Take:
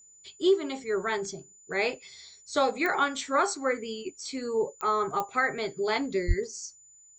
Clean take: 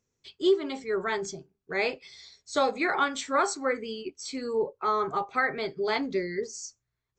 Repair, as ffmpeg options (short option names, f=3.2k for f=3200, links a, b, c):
-filter_complex "[0:a]adeclick=t=4,bandreject=f=7k:w=30,asplit=3[a][b][c];[a]afade=t=out:st=6.27:d=0.02[d];[b]highpass=f=140:w=0.5412,highpass=f=140:w=1.3066,afade=t=in:st=6.27:d=0.02,afade=t=out:st=6.39:d=0.02[e];[c]afade=t=in:st=6.39:d=0.02[f];[d][e][f]amix=inputs=3:normalize=0"